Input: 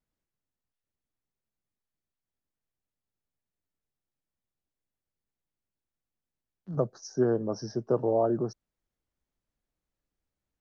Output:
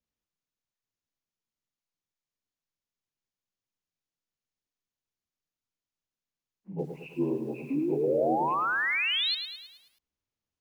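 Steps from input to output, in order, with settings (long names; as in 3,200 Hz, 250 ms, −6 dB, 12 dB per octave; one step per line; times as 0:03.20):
partials spread apart or drawn together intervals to 75%
sound drawn into the spectrogram rise, 0:07.70–0:09.35, 260–4,400 Hz −25 dBFS
feedback echo at a low word length 107 ms, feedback 55%, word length 9 bits, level −8 dB
level −3.5 dB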